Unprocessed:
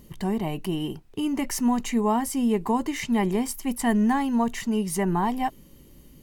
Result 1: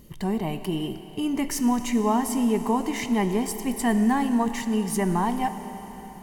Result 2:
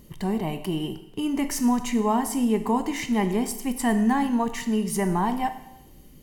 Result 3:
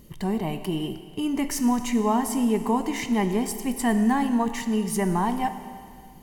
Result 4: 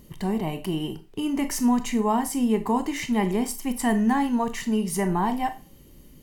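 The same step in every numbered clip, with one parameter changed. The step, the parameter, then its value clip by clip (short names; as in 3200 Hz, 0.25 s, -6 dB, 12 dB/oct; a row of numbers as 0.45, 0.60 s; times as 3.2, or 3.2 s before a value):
Schroeder reverb, RT60: 4.5, 0.83, 2.1, 0.31 s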